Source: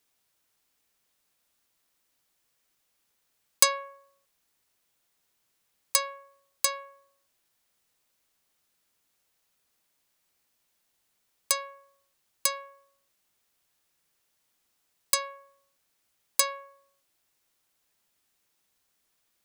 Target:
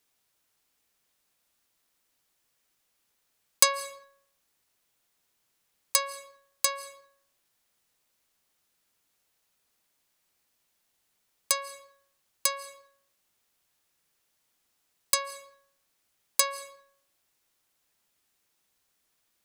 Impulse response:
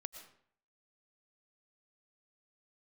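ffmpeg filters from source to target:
-filter_complex "[0:a]asplit=2[s0][s1];[1:a]atrim=start_sample=2205,afade=t=out:st=0.33:d=0.01,atrim=end_sample=14994,asetrate=29988,aresample=44100[s2];[s1][s2]afir=irnorm=-1:irlink=0,volume=0.562[s3];[s0][s3]amix=inputs=2:normalize=0,volume=0.708"

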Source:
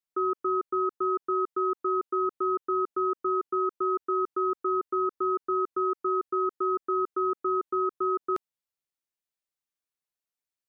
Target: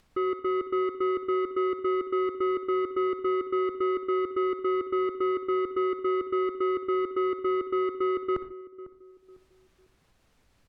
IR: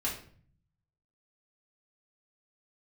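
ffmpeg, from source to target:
-filter_complex "[0:a]aemphasis=mode=reproduction:type=riaa,acompressor=mode=upward:threshold=0.00708:ratio=2.5,asoftclip=type=tanh:threshold=0.0891,asplit=2[s0][s1];[s1]adelay=500,lowpass=f=830:p=1,volume=0.168,asplit=2[s2][s3];[s3]adelay=500,lowpass=f=830:p=1,volume=0.38,asplit=2[s4][s5];[s5]adelay=500,lowpass=f=830:p=1,volume=0.38[s6];[s0][s2][s4][s6]amix=inputs=4:normalize=0,asplit=2[s7][s8];[1:a]atrim=start_sample=2205,atrim=end_sample=4410,adelay=58[s9];[s8][s9]afir=irnorm=-1:irlink=0,volume=0.15[s10];[s7][s10]amix=inputs=2:normalize=0"

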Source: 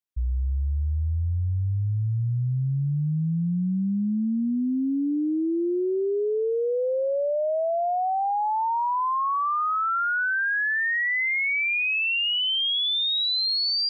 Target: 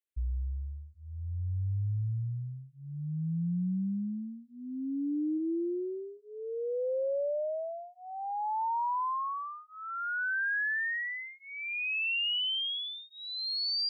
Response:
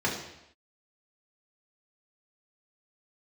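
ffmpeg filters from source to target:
-filter_complex "[0:a]asplit=3[s0][s1][s2];[s0]afade=t=out:st=5.37:d=0.02[s3];[s1]lowshelf=f=170:t=q:w=1.5:g=12,afade=t=in:st=5.37:d=0.02,afade=t=out:st=6.17:d=0.02[s4];[s2]afade=t=in:st=6.17:d=0.02[s5];[s3][s4][s5]amix=inputs=3:normalize=0,alimiter=level_in=1.19:limit=0.0631:level=0:latency=1:release=230,volume=0.841,asplit=2[s6][s7];[s7]afreqshift=-0.4[s8];[s6][s8]amix=inputs=2:normalize=1,volume=0.794"

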